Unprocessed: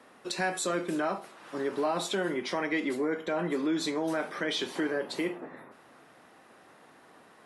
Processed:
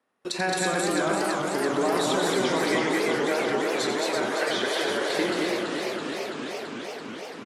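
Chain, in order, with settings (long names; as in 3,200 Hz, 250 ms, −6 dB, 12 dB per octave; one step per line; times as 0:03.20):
transient designer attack +5 dB, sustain +9 dB
0:02.79–0:05.10: Chebyshev high-pass filter 390 Hz, order 4
loudspeakers that aren't time-aligned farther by 30 metres −8 dB, 62 metres −11 dB, 75 metres −2 dB
noise gate with hold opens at −42 dBFS
feedback echo with a swinging delay time 336 ms, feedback 80%, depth 131 cents, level −5 dB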